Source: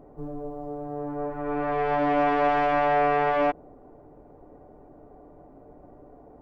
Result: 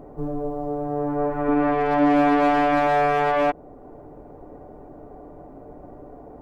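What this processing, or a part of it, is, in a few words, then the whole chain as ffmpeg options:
clipper into limiter: -filter_complex "[0:a]asoftclip=type=hard:threshold=-17dB,alimiter=limit=-21.5dB:level=0:latency=1:release=477,asettb=1/sr,asplit=3[link_01][link_02][link_03];[link_01]atrim=end=1.484[link_04];[link_02]atrim=start=1.48:end=2.87,asetpts=PTS-STARTPTS,afade=type=in:duration=0.004:curve=qsin,afade=type=out:start_time=1.386:duration=0.004:curve=qsin,equalizer=frequency=270:width_type=o:width=0.21:gain=13.5[link_05];[link_03]atrim=start=2.866[link_06];[link_04][link_05]acrossfade=duration=0.004:curve1=hsin:curve2=qsin[link_07];[link_07][link_06]acrossfade=duration=0.004:curve1=qsin:curve2=hsin,volume=7.5dB"

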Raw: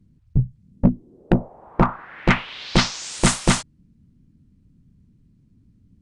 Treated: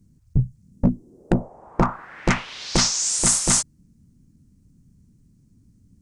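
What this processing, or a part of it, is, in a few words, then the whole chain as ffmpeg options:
over-bright horn tweeter: -filter_complex "[0:a]asettb=1/sr,asplit=3[link_01][link_02][link_03];[link_01]atrim=end=1.404[link_04];[link_02]atrim=start=1.4:end=1.9,asetpts=PTS-STARTPTS,afade=type=in:duration=0.004:curve=qsin,afade=type=out:start_time=0.496:duration=0.004:curve=qsin,lowpass=9000[link_05];[link_03]atrim=start=1.896[link_06];[link_04][link_05]acrossfade=duration=0.004:curve1=hsin:curve2=qsin[link_07];[link_07][link_06]acrossfade=duration=0.004:curve1=qsin:curve2=hsin,highshelf=frequency=4700:width_type=q:width=1.5:gain=10.5,alimiter=limit=-7dB:level=0:latency=1:release=59"

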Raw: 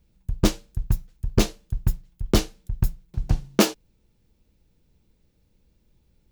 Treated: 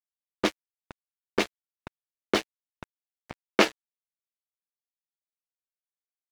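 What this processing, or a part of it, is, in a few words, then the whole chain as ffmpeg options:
pocket radio on a weak battery: -af "highpass=370,lowpass=3900,aeval=exprs='sgn(val(0))*max(abs(val(0))-0.0224,0)':channel_layout=same,equalizer=frequency=2000:width_type=o:width=0.77:gain=6.5,volume=2dB"

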